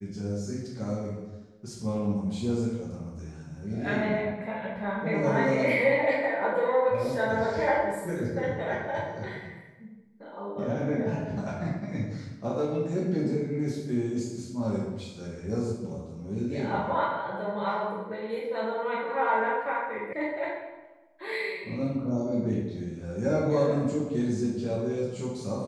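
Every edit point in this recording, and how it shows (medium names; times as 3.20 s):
20.13 s: sound stops dead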